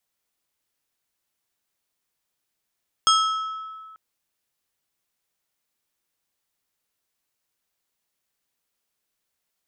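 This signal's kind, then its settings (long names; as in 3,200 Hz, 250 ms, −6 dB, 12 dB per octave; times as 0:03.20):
struck glass plate, lowest mode 1,300 Hz, decay 1.88 s, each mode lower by 3 dB, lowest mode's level −15 dB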